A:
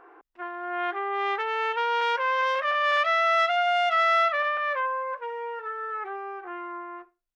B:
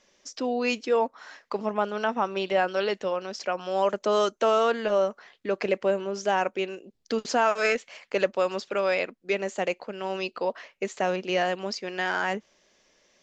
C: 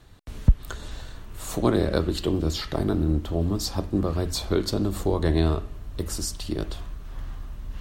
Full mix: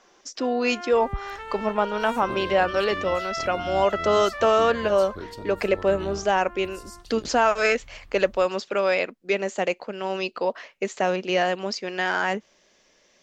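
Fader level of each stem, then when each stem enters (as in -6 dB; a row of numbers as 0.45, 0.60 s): -9.0, +3.0, -14.5 dB; 0.00, 0.00, 0.65 s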